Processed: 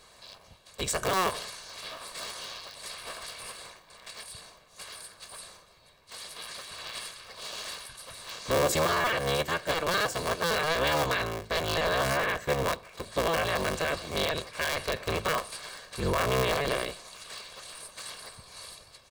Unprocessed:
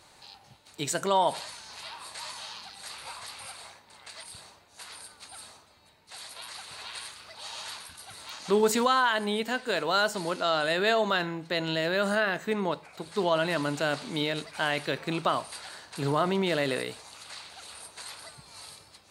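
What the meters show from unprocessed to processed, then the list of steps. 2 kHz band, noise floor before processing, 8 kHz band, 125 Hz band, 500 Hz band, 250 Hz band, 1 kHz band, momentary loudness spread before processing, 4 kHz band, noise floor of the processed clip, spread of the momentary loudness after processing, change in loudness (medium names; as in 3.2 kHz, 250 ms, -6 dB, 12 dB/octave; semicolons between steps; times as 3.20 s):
0.0 dB, -58 dBFS, +2.5 dB, +1.5 dB, -1.0 dB, -5.5 dB, -1.5 dB, 19 LU, 0.0 dB, -57 dBFS, 18 LU, -1.5 dB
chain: cycle switcher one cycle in 3, inverted; comb 1.8 ms, depth 49%; peak limiter -17.5 dBFS, peak gain reduction 5.5 dB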